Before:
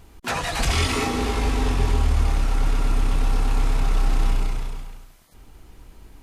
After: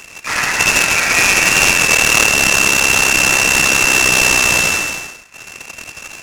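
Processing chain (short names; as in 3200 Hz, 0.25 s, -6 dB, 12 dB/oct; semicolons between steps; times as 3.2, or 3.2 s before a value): inverted band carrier 2700 Hz; compressor, threshold -18 dBFS, peak gain reduction 6.5 dB; tilt shelf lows -9.5 dB, about 660 Hz; reverb RT60 0.85 s, pre-delay 68 ms, DRR -1.5 dB; noise-modulated delay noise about 3500 Hz, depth 0.047 ms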